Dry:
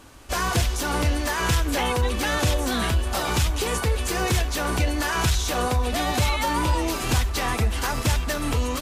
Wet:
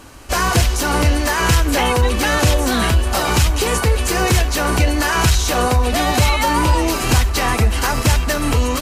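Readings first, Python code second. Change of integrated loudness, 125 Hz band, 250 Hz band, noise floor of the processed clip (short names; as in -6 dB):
+7.5 dB, +7.5 dB, +7.5 dB, -21 dBFS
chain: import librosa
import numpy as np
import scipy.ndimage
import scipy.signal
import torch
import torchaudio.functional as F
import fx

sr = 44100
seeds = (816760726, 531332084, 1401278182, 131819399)

y = fx.notch(x, sr, hz=3500.0, q=14.0)
y = F.gain(torch.from_numpy(y), 7.5).numpy()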